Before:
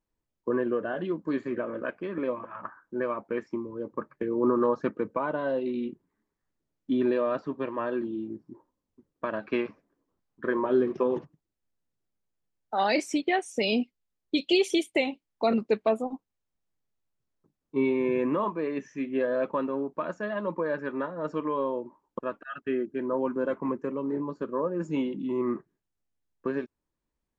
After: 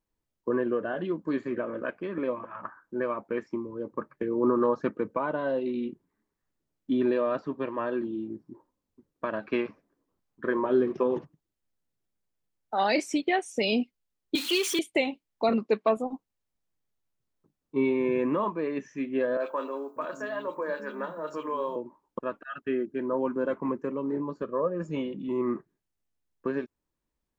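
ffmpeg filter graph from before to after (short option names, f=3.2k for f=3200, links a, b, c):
-filter_complex "[0:a]asettb=1/sr,asplit=3[a][b][c];[a]atrim=end=14.354[d];[b]atrim=start=14.35:end=14.79,asetpts=PTS-STARTPTS,afade=t=in:d=0.004:c=qsin,afade=t=out:st=0.436:d=0.004:c=qsin,aeval=exprs='val(0)+0.5*0.0398*sgn(val(0))':c=same,highpass=f=310:w=0.5412,highpass=f=310:w=1.3066,equalizer=f=610:w=1.2:g=-14[e];[c]atrim=start=14.786[f];[d][e]acrossfade=d=0.004:c1=hsin:c2=qsin[g];[g][f]acrossfade=d=0.004:c1=qsin:c2=hsin,asettb=1/sr,asplit=3[h][i][j];[h]atrim=end=15.494[k];[i]atrim=start=15.49:end=15.97,asetpts=PTS-STARTPTS,afade=t=in:d=0.004:c=qsin,afade=t=out:st=0.476:d=0.004:c=qsin,highpass=140,lowpass=7.7k,equalizer=f=1.1k:w=6.3:g=7.5[l];[j]atrim=start=15.966[m];[k][l]acrossfade=d=0.004:c1=hsin:c2=qsin[n];[n][m]acrossfade=d=0.004:c1=qsin:c2=hsin,asettb=1/sr,asplit=3[o][p][q];[o]atrim=end=19.374[r];[p]atrim=start=19.37:end=21.76,asetpts=PTS-STARTPTS,afade=t=in:d=0.004:c=qsin,afade=t=out:st=2.386:d=0.004:c=qsin,aemphasis=mode=production:type=bsi,bandreject=f=47.73:t=h:w=4,bandreject=f=95.46:t=h:w=4,bandreject=f=143.19:t=h:w=4,bandreject=f=190.92:t=h:w=4,bandreject=f=238.65:t=h:w=4,bandreject=f=286.38:t=h:w=4,bandreject=f=334.11:t=h:w=4,bandreject=f=381.84:t=h:w=4,bandreject=f=429.57:t=h:w=4,bandreject=f=477.3:t=h:w=4,bandreject=f=525.03:t=h:w=4,bandreject=f=572.76:t=h:w=4,bandreject=f=620.49:t=h:w=4,bandreject=f=668.22:t=h:w=4,bandreject=f=715.95:t=h:w=4,bandreject=f=763.68:t=h:w=4,bandreject=f=811.41:t=h:w=4,bandreject=f=859.14:t=h:w=4,bandreject=f=906.87:t=h:w=4,bandreject=f=954.6:t=h:w=4,bandreject=f=1.00233k:t=h:w=4,bandreject=f=1.05006k:t=h:w=4,bandreject=f=1.09779k:t=h:w=4,bandreject=f=1.14552k:t=h:w=4,bandreject=f=1.19325k:t=h:w=4,bandreject=f=1.24098k:t=h:w=4,bandreject=f=1.28871k:t=h:w=4,bandreject=f=1.33644k:t=h:w=4,bandreject=f=1.38417k:t=h:w=4,bandreject=f=1.4319k:t=h:w=4,bandreject=f=1.47963k:t=h:w=4,bandreject=f=1.52736k:t=h:w=4,bandreject=f=1.57509k:t=h:w=4,acrossover=split=250|2400[s][t][u];[u]adelay=30[v];[s]adelay=590[w];[w][t][v]amix=inputs=3:normalize=0,atrim=end_sample=105399[x];[q]atrim=start=21.756[y];[r][x]acrossfade=d=0.004:c1=hsin:c2=qsin[z];[z][y]acrossfade=d=0.004:c1=qsin:c2=hsin,asettb=1/sr,asplit=3[aa][ab][ac];[aa]atrim=end=24.424[ad];[ab]atrim=start=24.42:end=25.28,asetpts=PTS-STARTPTS,afade=t=in:d=0.004:c=qsin,afade=t=out:st=0.856:d=0.004:c=qsin,highshelf=f=8.2k:g=-11.5,aecho=1:1:1.7:0.42,atrim=end_sample=37926[ae];[ac]atrim=start=25.276[af];[ad][ae]acrossfade=d=0.004:c1=hsin:c2=qsin[ag];[ag][af]acrossfade=d=0.004:c1=qsin:c2=hsin"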